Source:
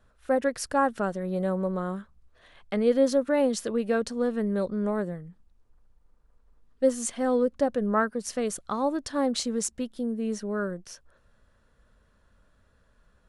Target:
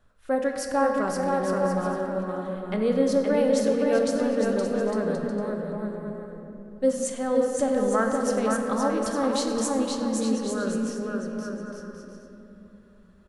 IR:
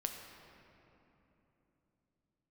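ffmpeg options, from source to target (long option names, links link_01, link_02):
-filter_complex "[0:a]aecho=1:1:520|858|1078|1221|1313:0.631|0.398|0.251|0.158|0.1[link_01];[1:a]atrim=start_sample=2205[link_02];[link_01][link_02]afir=irnorm=-1:irlink=0"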